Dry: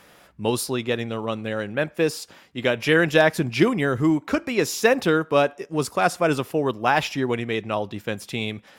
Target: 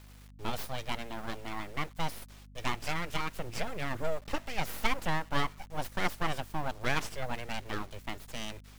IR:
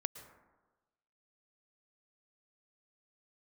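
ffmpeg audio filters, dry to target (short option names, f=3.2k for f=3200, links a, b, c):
-filter_complex "[0:a]acrossover=split=110[a][b];[b]aeval=exprs='abs(val(0))':c=same[c];[a][c]amix=inputs=2:normalize=0,asettb=1/sr,asplit=3[d][e][f];[d]atrim=end=2.784[g];[e]atrim=start=2.78:end=3.91,asetpts=PTS-STARTPTS,afade=t=in:d=0.004:c=qsin,afade=t=out:st=1.126:d=0.004:c=qsin,acompressor=threshold=-19dB:ratio=5[h];[f]atrim=start=3.906[i];[g][h]acrossfade=d=0.004:c1=hsin:c2=qsin[j];[j][i]acrossfade=d=0.004:c1=qsin:c2=hsin,acrusher=bits=7:mix=0:aa=0.000001,aeval=exprs='val(0)+0.00708*(sin(2*PI*50*n/s)+sin(2*PI*2*50*n/s)/2+sin(2*PI*3*50*n/s)/3+sin(2*PI*4*50*n/s)/4+sin(2*PI*5*50*n/s)/5)':c=same,volume=-8.5dB"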